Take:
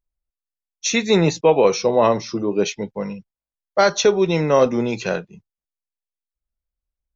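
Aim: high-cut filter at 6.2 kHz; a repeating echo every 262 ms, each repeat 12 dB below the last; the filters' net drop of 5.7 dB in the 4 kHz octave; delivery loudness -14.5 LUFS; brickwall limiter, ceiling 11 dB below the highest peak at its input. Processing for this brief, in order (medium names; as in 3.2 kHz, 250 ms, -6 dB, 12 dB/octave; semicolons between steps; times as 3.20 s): low-pass 6.2 kHz; peaking EQ 4 kHz -6 dB; peak limiter -15.5 dBFS; feedback delay 262 ms, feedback 25%, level -12 dB; trim +11 dB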